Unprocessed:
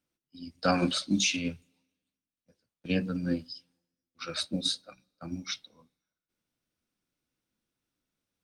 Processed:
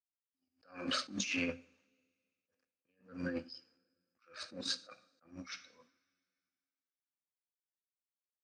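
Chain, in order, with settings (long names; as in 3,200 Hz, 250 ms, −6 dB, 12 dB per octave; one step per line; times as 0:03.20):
mu-law and A-law mismatch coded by A
loudspeaker in its box 110–6,800 Hz, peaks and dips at 170 Hz −9 dB, 510 Hz +7 dB, 1,200 Hz +8 dB, 1,700 Hz +9 dB, 2,500 Hz +5 dB, 3,700 Hz −9 dB
compressor whose output falls as the input rises −34 dBFS, ratio −1
convolution reverb, pre-delay 3 ms, DRR 15 dB
level that may rise only so fast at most 160 dB per second
level −3 dB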